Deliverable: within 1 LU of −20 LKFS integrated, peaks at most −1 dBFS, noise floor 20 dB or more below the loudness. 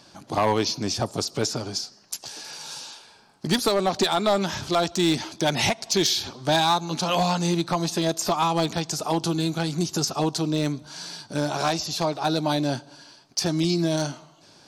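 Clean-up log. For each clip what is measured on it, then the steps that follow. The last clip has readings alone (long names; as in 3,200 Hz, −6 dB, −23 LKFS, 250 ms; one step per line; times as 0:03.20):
share of clipped samples 0.6%; peaks flattened at −14.5 dBFS; integrated loudness −24.5 LKFS; sample peak −14.5 dBFS; target loudness −20.0 LKFS
→ clipped peaks rebuilt −14.5 dBFS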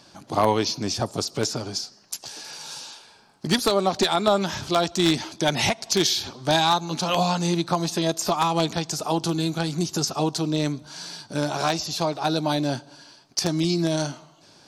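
share of clipped samples 0.0%; integrated loudness −24.0 LKFS; sample peak −5.5 dBFS; target loudness −20.0 LKFS
→ level +4 dB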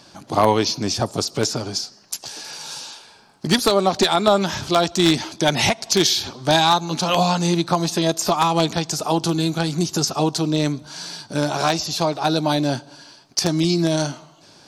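integrated loudness −20.0 LKFS; sample peak −1.5 dBFS; background noise floor −50 dBFS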